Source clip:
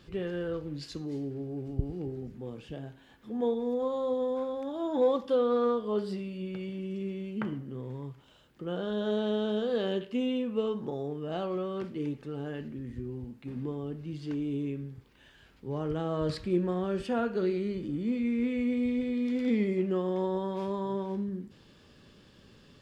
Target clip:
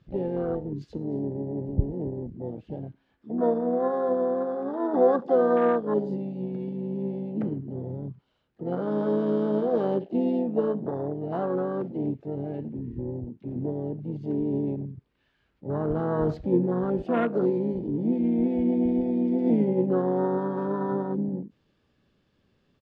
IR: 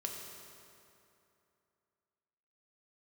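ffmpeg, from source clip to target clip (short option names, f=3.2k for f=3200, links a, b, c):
-filter_complex "[0:a]adynamicsmooth=sensitivity=4.5:basefreq=4.4k,asplit=4[a][b][c][d];[b]asetrate=33038,aresample=44100,atempo=1.33484,volume=-12dB[e];[c]asetrate=58866,aresample=44100,atempo=0.749154,volume=-11dB[f];[d]asetrate=66075,aresample=44100,atempo=0.66742,volume=-14dB[g];[a][e][f][g]amix=inputs=4:normalize=0,afwtdn=0.0158,volume=4.5dB"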